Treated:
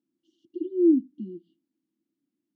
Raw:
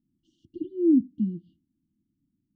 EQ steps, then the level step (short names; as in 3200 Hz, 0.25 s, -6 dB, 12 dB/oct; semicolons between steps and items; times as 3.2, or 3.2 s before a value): resonant high-pass 430 Hz, resonance Q 4.3; air absorption 51 m; 0.0 dB